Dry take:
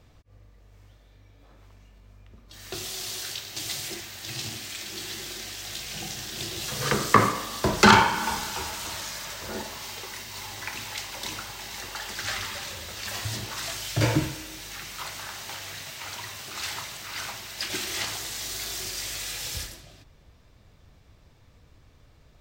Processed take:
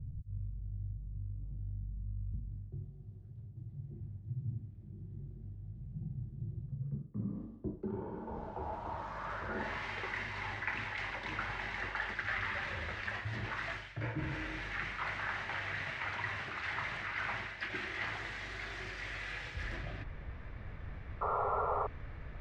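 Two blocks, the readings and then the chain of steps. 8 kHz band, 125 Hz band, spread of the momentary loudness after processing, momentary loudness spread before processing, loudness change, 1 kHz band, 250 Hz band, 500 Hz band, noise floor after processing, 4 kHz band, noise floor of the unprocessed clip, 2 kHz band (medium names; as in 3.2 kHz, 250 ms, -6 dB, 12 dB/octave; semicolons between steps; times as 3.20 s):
-30.5 dB, -5.5 dB, 11 LU, 12 LU, -11.0 dB, -11.5 dB, -12.5 dB, -10.0 dB, -50 dBFS, -18.0 dB, -56 dBFS, -6.5 dB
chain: bass shelf 130 Hz +6 dB; reverse; compression 10:1, threshold -43 dBFS, peak gain reduction 32 dB; reverse; low-pass sweep 140 Hz -> 1.9 kHz, 6.84–9.74 s; painted sound noise, 21.21–21.87 s, 390–1400 Hz -40 dBFS; trim +6.5 dB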